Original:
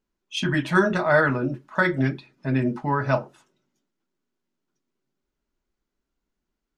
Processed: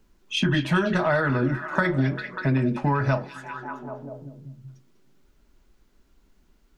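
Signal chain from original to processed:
low-shelf EQ 110 Hz +10 dB
downward compressor, threshold −22 dBFS, peak gain reduction 9.5 dB
echo through a band-pass that steps 196 ms, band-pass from 3,500 Hz, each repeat −0.7 octaves, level −6.5 dB
multiband upward and downward compressor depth 40%
level +3.5 dB

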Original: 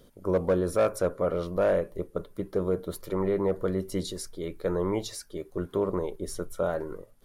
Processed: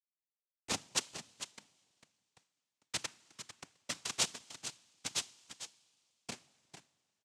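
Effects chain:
fade-out on the ending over 2.35 s
inverse Chebyshev band-stop filter 130–1,800 Hz, stop band 70 dB
in parallel at +3 dB: downward compressor 8 to 1, threshold −50 dBFS, peak gain reduction 14.5 dB
on the sum: centre clipping without the shift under −34 dBFS
on a send: single-tap delay 449 ms −11 dB
on the sum: coupled-rooms reverb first 0.36 s, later 2.5 s, from −16 dB, DRR 15.5 dB
cochlear-implant simulation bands 4
level +14 dB

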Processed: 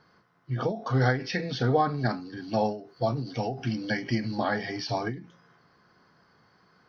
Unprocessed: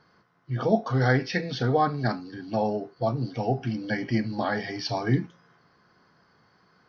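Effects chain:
0:02.37–0:04.38: high-shelf EQ 3,200 Hz +8 dB
every ending faded ahead of time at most 120 dB per second

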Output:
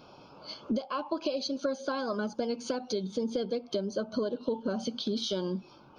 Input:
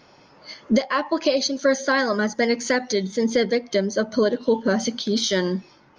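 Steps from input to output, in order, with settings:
parametric band 6,600 Hz −9.5 dB 0.72 octaves
downward compressor 4 to 1, threshold −30 dBFS, peak gain reduction 13.5 dB
Butterworth band-reject 1,900 Hz, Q 1.9

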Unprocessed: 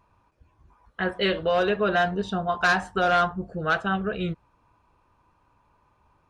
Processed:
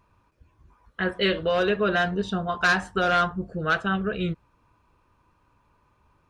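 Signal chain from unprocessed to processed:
parametric band 780 Hz −6 dB 0.74 octaves
level +1.5 dB

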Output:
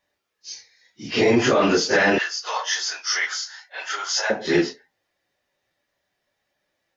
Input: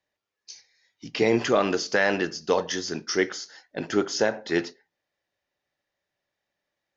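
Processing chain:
random phases in long frames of 100 ms
brickwall limiter −16 dBFS, peak gain reduction 6.5 dB
0:02.18–0:04.30: high-pass filter 850 Hz 24 dB per octave
level +7.5 dB

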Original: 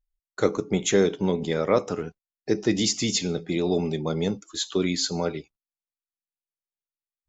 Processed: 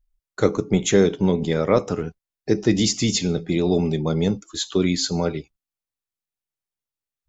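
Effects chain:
low-shelf EQ 160 Hz +9.5 dB
level +2 dB

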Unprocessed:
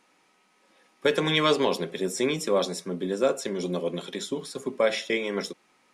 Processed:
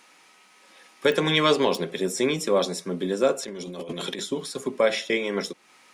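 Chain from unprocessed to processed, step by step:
0:03.43–0:04.20: compressor whose output falls as the input rises −37 dBFS, ratio −1
digital clicks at 0:01.12/0:01.75, −20 dBFS
one half of a high-frequency compander encoder only
level +2 dB

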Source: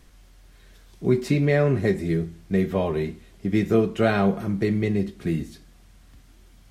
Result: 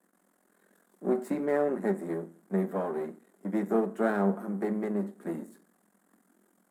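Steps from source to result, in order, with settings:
gain on one half-wave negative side −12 dB
flat-topped bell 3,700 Hz −16 dB
noise gate with hold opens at −47 dBFS
elliptic high-pass filter 190 Hz, stop band 40 dB
level −2.5 dB

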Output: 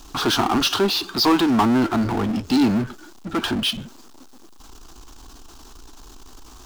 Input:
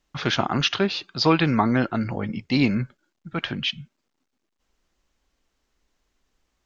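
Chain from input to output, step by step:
phaser with its sweep stopped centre 550 Hz, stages 6
power curve on the samples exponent 0.5

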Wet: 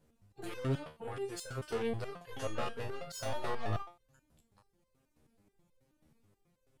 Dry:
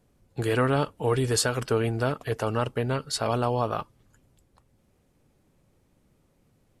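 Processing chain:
0:00.77–0:01.66: downward compressor 6 to 1, threshold −27 dBFS, peak gain reduction 8 dB
soft clipping −28.5 dBFS, distortion −7 dB
0:02.23–0:03.77: flutter between parallel walls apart 3.2 metres, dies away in 0.34 s
step-sequenced resonator 9.3 Hz 77–520 Hz
level +5 dB

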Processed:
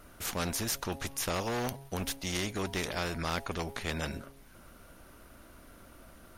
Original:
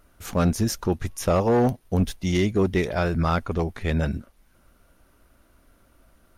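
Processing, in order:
hum removal 136.9 Hz, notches 7
every bin compressed towards the loudest bin 2 to 1

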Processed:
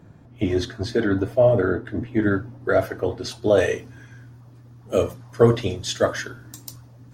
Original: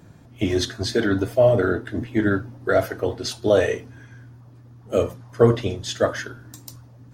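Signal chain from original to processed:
high-shelf EQ 3,000 Hz −10.5 dB, from 0:02.22 −5.5 dB, from 0:03.58 +3 dB

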